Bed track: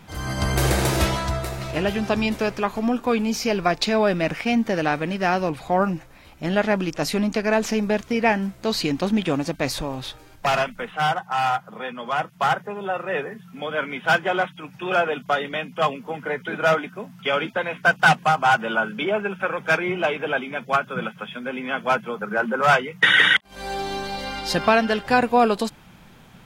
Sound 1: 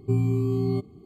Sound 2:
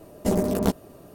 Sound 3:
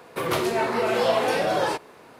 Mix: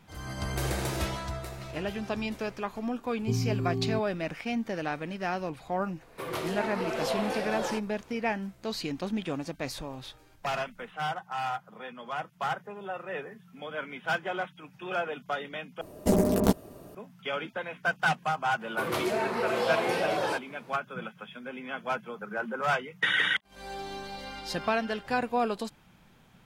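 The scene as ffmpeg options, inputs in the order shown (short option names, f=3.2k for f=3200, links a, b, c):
-filter_complex "[3:a]asplit=2[a][b];[0:a]volume=-10.5dB,asplit=2[c][d];[c]atrim=end=15.814[e];[2:a]atrim=end=1.14,asetpts=PTS-STARTPTS,volume=-0.5dB[f];[d]atrim=start=16.946[g];[1:a]atrim=end=1.05,asetpts=PTS-STARTPTS,volume=-6dB,afade=t=in:d=0.004:c=hsin,afade=t=out:st=1.046:d=0.004:c=hsin,adelay=3190[h];[a]atrim=end=2.19,asetpts=PTS-STARTPTS,volume=-9.5dB,afade=t=in:d=0.004:c=hsin,afade=t=out:st=2.186:d=0.004:c=hsin,adelay=6020[i];[b]atrim=end=2.19,asetpts=PTS-STARTPTS,volume=-6dB,afade=t=in:d=0.004:c=hsin,afade=t=out:st=2.186:d=0.004:c=hsin,adelay=18610[j];[e][f]acrossfade=d=0.004:c1=hsin:c2=hsin[k];[k][g]acrossfade=d=0.004:c1=hsin:c2=hsin[l];[l][h][i][j]amix=inputs=4:normalize=0"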